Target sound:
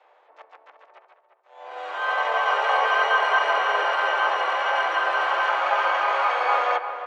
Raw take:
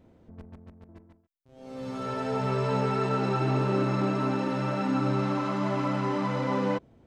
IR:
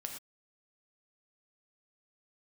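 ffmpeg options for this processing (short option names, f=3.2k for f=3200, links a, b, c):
-filter_complex "[0:a]highpass=f=600:t=q:w=0.5412,highpass=f=600:t=q:w=1.307,lowpass=f=3.4k:t=q:w=0.5176,lowpass=f=3.4k:t=q:w=0.7071,lowpass=f=3.4k:t=q:w=1.932,afreqshift=230,asplit=4[a][b][c][d];[b]asetrate=29433,aresample=44100,atempo=1.49831,volume=-3dB[e];[c]asetrate=35002,aresample=44100,atempo=1.25992,volume=-7dB[f];[d]asetrate=88200,aresample=44100,atempo=0.5,volume=-16dB[g];[a][e][f][g]amix=inputs=4:normalize=0,asplit=2[h][i];[i]adelay=349,lowpass=f=2k:p=1,volume=-8.5dB,asplit=2[j][k];[k]adelay=349,lowpass=f=2k:p=1,volume=0.23,asplit=2[l][m];[m]adelay=349,lowpass=f=2k:p=1,volume=0.23[n];[h][j][l][n]amix=inputs=4:normalize=0,volume=9dB"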